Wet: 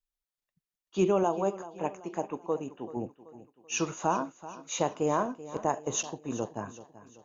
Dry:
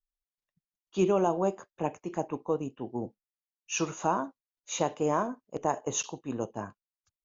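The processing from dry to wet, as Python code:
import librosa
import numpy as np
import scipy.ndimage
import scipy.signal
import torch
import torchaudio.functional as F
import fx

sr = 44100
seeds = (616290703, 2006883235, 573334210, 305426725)

y = fx.low_shelf(x, sr, hz=150.0, db=-11.5, at=(1.23, 2.97))
y = fx.echo_feedback(y, sr, ms=383, feedback_pct=45, wet_db=-16.0)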